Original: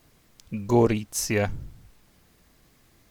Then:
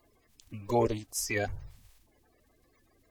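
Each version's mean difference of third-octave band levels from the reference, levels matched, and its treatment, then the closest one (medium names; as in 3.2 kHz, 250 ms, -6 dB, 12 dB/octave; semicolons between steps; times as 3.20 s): 4.0 dB: coarse spectral quantiser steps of 30 dB; peaking EQ 170 Hz -13.5 dB 0.8 oct; band-stop 1.4 kHz, Q 9.5; trim -4.5 dB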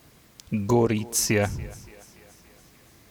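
5.5 dB: high-pass 47 Hz; compression 2.5:1, threshold -26 dBFS, peak gain reduction 8 dB; thinning echo 286 ms, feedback 62%, high-pass 190 Hz, level -21.5 dB; trim +6 dB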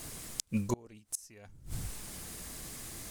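13.0 dB: peaking EQ 9.1 kHz +13 dB 1.2 oct; reverse; compression 20:1, threshold -33 dBFS, peak gain reduction 20 dB; reverse; inverted gate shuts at -30 dBFS, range -29 dB; trim +12 dB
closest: first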